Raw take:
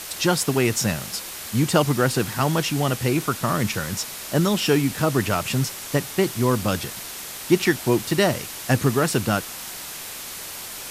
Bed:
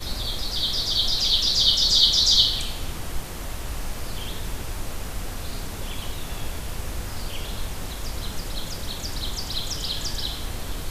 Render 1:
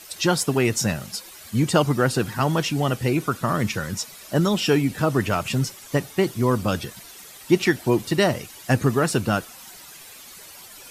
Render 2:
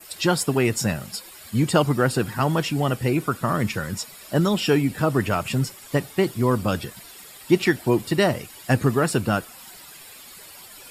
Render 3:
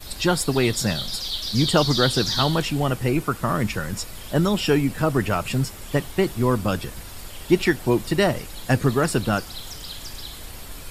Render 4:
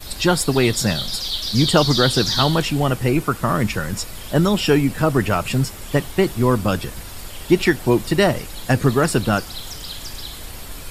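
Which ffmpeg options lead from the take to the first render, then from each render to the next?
-af "afftdn=nr=12:nf=-35"
-af "bandreject=f=6100:w=5.8,adynamicequalizer=threshold=0.00708:dfrequency=3800:dqfactor=1.5:tfrequency=3800:tqfactor=1.5:attack=5:release=100:ratio=0.375:range=1.5:mode=cutabove:tftype=bell"
-filter_complex "[1:a]volume=0.398[s0];[0:a][s0]amix=inputs=2:normalize=0"
-af "volume=1.5,alimiter=limit=0.708:level=0:latency=1"

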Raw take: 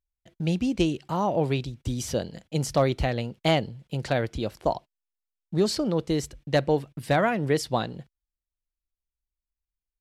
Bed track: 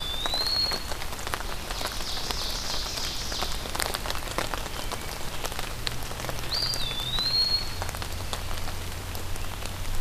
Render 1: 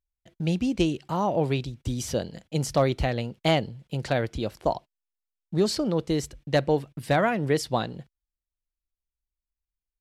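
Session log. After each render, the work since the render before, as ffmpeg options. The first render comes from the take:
-af anull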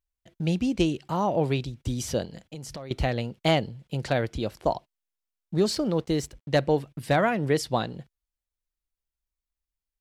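-filter_complex "[0:a]asettb=1/sr,asplit=3[s0][s1][s2];[s0]atrim=end=2.254[s3];[s1]atrim=start=2.25:end=2.91,asetpts=PTS-STARTPTS,afade=t=in:d=0.004:c=qsin,afade=t=out:st=0.656:d=0.004:c=qsin,acompressor=threshold=0.0178:ratio=8:attack=3.2:release=140:knee=1:detection=peak[s4];[s2]atrim=start=2.906[s5];[s3][s4]acrossfade=d=0.004:c1=hsin:c2=qsin[s6];[s6][s5]acrossfade=d=0.004:c1=qsin:c2=hsin,asettb=1/sr,asplit=3[s7][s8][s9];[s7]atrim=end=5.554[s10];[s8]atrim=start=5.55:end=6.49,asetpts=PTS-STARTPTS,afade=t=in:d=0.004:c=qsin,afade=t=out:st=0.936:d=0.004:c=qsin,aeval=exprs='sgn(val(0))*max(abs(val(0))-0.00178,0)':c=same[s11];[s9]atrim=start=6.486[s12];[s10][s11]acrossfade=d=0.004:c1=hsin:c2=qsin[s13];[s13][s12]acrossfade=d=0.004:c1=qsin:c2=hsin"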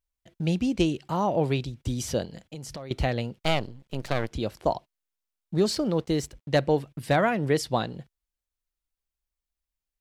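-filter_complex "[0:a]asettb=1/sr,asplit=3[s0][s1][s2];[s0]atrim=end=3.384[s3];[s1]atrim=start=3.38:end=4.32,asetpts=PTS-STARTPTS,afade=t=in:d=0.004:c=qsin,afade=t=out:st=0.936:d=0.004:c=qsin,aeval=exprs='max(val(0),0)':c=same[s4];[s2]atrim=start=4.316[s5];[s3][s4]acrossfade=d=0.004:c1=hsin:c2=qsin[s6];[s6][s5]acrossfade=d=0.004:c1=qsin:c2=hsin"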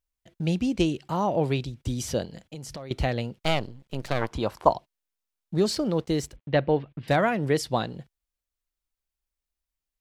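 -filter_complex "[0:a]asettb=1/sr,asplit=3[s0][s1][s2];[s0]atrim=end=4.214[s3];[s1]atrim=start=4.21:end=4.69,asetpts=PTS-STARTPTS,afade=t=in:d=0.004:c=qsin,afade=t=out:st=0.476:d=0.004:c=qsin,equalizer=f=1000:t=o:w=0.92:g=14.5[s4];[s2]atrim=start=4.686[s5];[s3][s4]acrossfade=d=0.004:c1=hsin:c2=qsin[s6];[s6][s5]acrossfade=d=0.004:c1=qsin:c2=hsin,asettb=1/sr,asplit=3[s7][s8][s9];[s7]atrim=end=6.364[s10];[s8]atrim=start=6.36:end=7.08,asetpts=PTS-STARTPTS,afade=t=in:d=0.004:c=qsin,afade=t=out:st=0.716:d=0.004:c=qsin,lowpass=f=3500:w=0.5412,lowpass=f=3500:w=1.3066[s11];[s9]atrim=start=7.076[s12];[s10][s11]acrossfade=d=0.004:c1=hsin:c2=qsin[s13];[s13][s12]acrossfade=d=0.004:c1=qsin:c2=hsin"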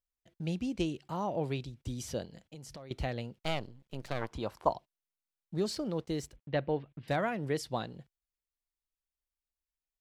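-af "volume=0.355"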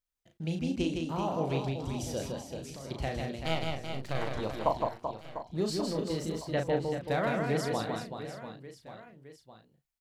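-filter_complex "[0:a]asplit=2[s0][s1];[s1]adelay=37,volume=0.531[s2];[s0][s2]amix=inputs=2:normalize=0,aecho=1:1:160|384|697.6|1137|1751:0.631|0.398|0.251|0.158|0.1"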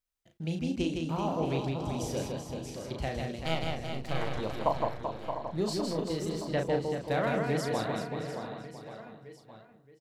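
-filter_complex "[0:a]asplit=2[s0][s1];[s1]adelay=623,lowpass=f=3000:p=1,volume=0.398,asplit=2[s2][s3];[s3]adelay=623,lowpass=f=3000:p=1,volume=0.21,asplit=2[s4][s5];[s5]adelay=623,lowpass=f=3000:p=1,volume=0.21[s6];[s0][s2][s4][s6]amix=inputs=4:normalize=0"

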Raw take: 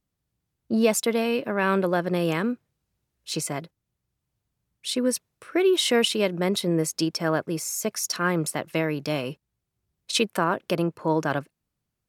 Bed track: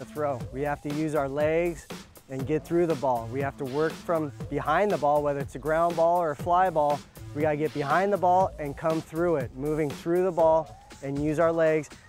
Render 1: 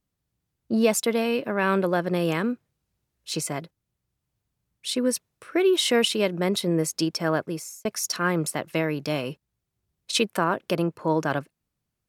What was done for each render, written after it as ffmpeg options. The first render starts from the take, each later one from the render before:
-filter_complex "[0:a]asplit=2[s0][s1];[s0]atrim=end=7.85,asetpts=PTS-STARTPTS,afade=t=out:st=7.43:d=0.42[s2];[s1]atrim=start=7.85,asetpts=PTS-STARTPTS,afade=t=in:d=0.004:c=hsin[s3];[s2][s3]concat=n=2:v=0:a=1"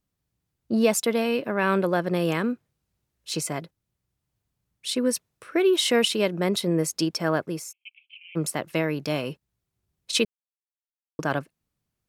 -filter_complex "[0:a]asplit=3[s0][s1][s2];[s0]afade=t=out:st=7.71:d=0.02[s3];[s1]asuperpass=centerf=2700:order=12:qfactor=2.9,afade=t=in:st=7.71:d=0.02,afade=t=out:st=8.35:d=0.02[s4];[s2]afade=t=in:st=8.35:d=0.02[s5];[s3][s4][s5]amix=inputs=3:normalize=0,asplit=3[s6][s7][s8];[s6]atrim=end=10.25,asetpts=PTS-STARTPTS,afade=t=out:st=10.246:d=0.004:c=hsin[s9];[s7]atrim=start=10.25:end=11.19,asetpts=PTS-STARTPTS,volume=0[s10];[s8]atrim=start=11.19,asetpts=PTS-STARTPTS,afade=t=in:d=0.004:c=hsin[s11];[s9][s10][s11]concat=n=3:v=0:a=1"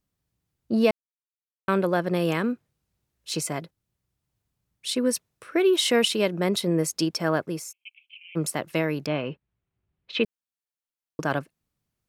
-filter_complex "[0:a]asettb=1/sr,asplit=3[s0][s1][s2];[s0]atrim=end=9.064[s3];[s1]atrim=start=9.06:end=10.24,asetpts=PTS-STARTPTS,afade=t=in:d=0.004:c=qsin,afade=t=out:st=1.176:d=0.004:c=qsin,lowpass=f=3100:w=0.5412,lowpass=f=3100:w=1.3066[s4];[s2]atrim=start=10.236[s5];[s3][s4]acrossfade=d=0.004:c1=hsin:c2=qsin[s6];[s6][s5]acrossfade=d=0.004:c1=qsin:c2=hsin,asplit=3[s7][s8][s9];[s7]atrim=end=0.91,asetpts=PTS-STARTPTS,afade=t=out:st=0.906:d=0.004:c=hsin[s10];[s8]atrim=start=0.91:end=1.68,asetpts=PTS-STARTPTS,volume=0[s11];[s9]atrim=start=1.68,asetpts=PTS-STARTPTS,afade=t=in:d=0.004:c=hsin[s12];[s10][s11][s12]concat=n=3:v=0:a=1"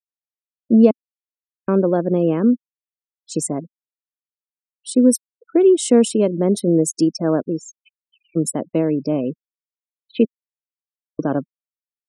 -af "afftfilt=real='re*gte(hypot(re,im),0.0316)':imag='im*gte(hypot(re,im),0.0316)':win_size=1024:overlap=0.75,equalizer=f=250:t=o:w=1:g=12,equalizer=f=500:t=o:w=1:g=5,equalizer=f=2000:t=o:w=1:g=-11,equalizer=f=4000:t=o:w=1:g=-8,equalizer=f=8000:t=o:w=1:g=10"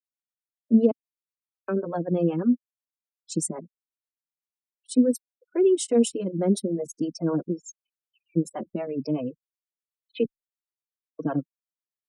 -filter_complex "[0:a]acrossover=split=430[s0][s1];[s0]aeval=exprs='val(0)*(1-1/2+1/2*cos(2*PI*8*n/s))':c=same[s2];[s1]aeval=exprs='val(0)*(1-1/2-1/2*cos(2*PI*8*n/s))':c=same[s3];[s2][s3]amix=inputs=2:normalize=0,asplit=2[s4][s5];[s5]adelay=3.9,afreqshift=0.97[s6];[s4][s6]amix=inputs=2:normalize=1"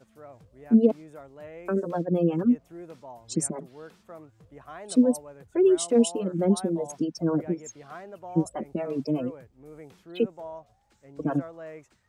-filter_complex "[1:a]volume=0.119[s0];[0:a][s0]amix=inputs=2:normalize=0"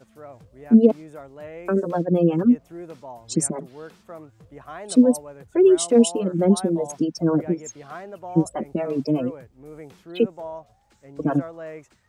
-af "volume=1.78"

